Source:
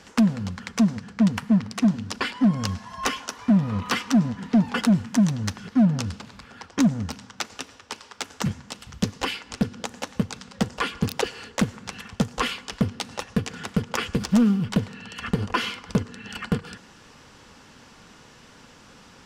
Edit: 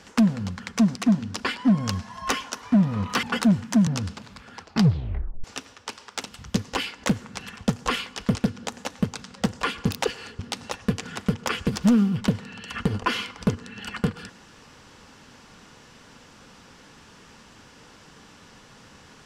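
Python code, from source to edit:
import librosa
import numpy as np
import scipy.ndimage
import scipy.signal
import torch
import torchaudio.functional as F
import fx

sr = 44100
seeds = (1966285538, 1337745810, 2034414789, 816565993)

y = fx.edit(x, sr, fx.cut(start_s=0.95, length_s=0.76),
    fx.cut(start_s=3.99, length_s=0.66),
    fx.cut(start_s=5.29, length_s=0.61),
    fx.tape_stop(start_s=6.64, length_s=0.83),
    fx.cut(start_s=8.27, length_s=0.45),
    fx.move(start_s=11.56, length_s=1.31, to_s=9.52), tone=tone)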